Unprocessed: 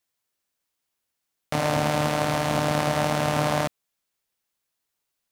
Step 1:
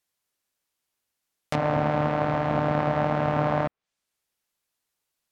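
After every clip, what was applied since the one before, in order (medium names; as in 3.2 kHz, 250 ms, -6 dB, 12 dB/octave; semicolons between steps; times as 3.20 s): low-pass that closes with the level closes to 1.7 kHz, closed at -23.5 dBFS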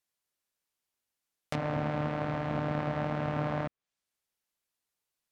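dynamic bell 800 Hz, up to -5 dB, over -34 dBFS, Q 0.94; trim -5.5 dB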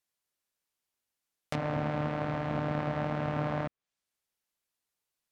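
no audible change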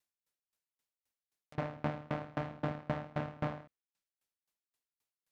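sawtooth tremolo in dB decaying 3.8 Hz, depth 30 dB; trim +2 dB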